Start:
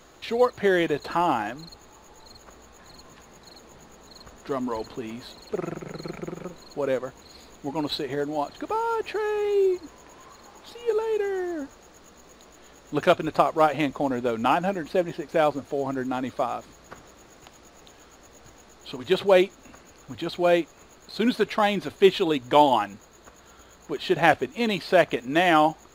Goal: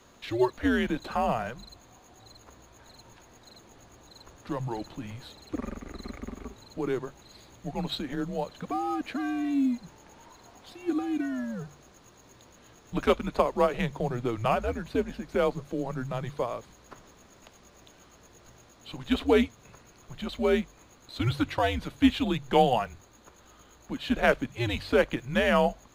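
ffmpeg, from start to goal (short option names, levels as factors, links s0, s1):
-af "afreqshift=-120,bandreject=f=47.9:t=h:w=4,bandreject=f=95.8:t=h:w=4,bandreject=f=143.7:t=h:w=4,volume=0.631"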